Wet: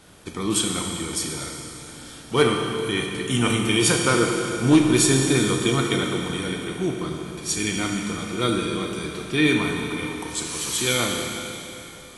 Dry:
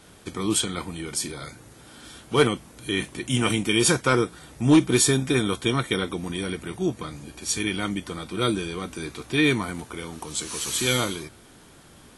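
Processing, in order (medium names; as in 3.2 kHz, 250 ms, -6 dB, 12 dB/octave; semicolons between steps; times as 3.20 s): Schroeder reverb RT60 3.2 s, combs from 26 ms, DRR 1.5 dB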